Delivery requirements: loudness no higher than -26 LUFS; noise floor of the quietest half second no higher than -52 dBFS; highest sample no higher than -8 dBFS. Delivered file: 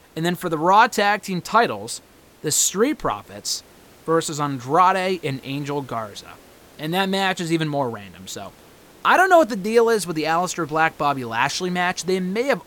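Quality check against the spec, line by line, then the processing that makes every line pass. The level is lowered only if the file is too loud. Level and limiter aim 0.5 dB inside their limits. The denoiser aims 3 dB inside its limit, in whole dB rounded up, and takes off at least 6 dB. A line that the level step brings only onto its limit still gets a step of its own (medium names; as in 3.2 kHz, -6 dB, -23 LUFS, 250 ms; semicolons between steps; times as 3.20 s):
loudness -20.5 LUFS: fail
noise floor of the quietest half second -48 dBFS: fail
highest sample -3.0 dBFS: fail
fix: trim -6 dB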